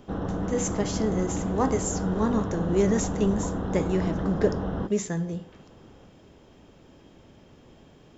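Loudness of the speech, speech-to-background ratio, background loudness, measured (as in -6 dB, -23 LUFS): -28.0 LUFS, 2.5 dB, -30.5 LUFS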